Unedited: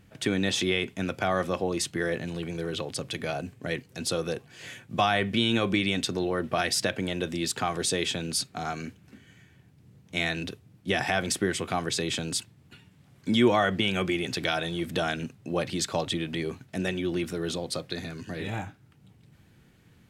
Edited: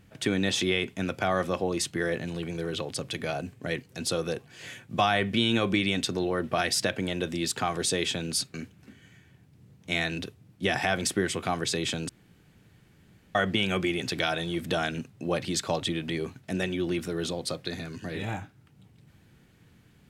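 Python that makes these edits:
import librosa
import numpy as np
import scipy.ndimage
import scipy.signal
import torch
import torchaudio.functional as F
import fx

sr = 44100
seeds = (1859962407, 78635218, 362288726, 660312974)

y = fx.edit(x, sr, fx.cut(start_s=8.54, length_s=0.25),
    fx.room_tone_fill(start_s=12.34, length_s=1.26), tone=tone)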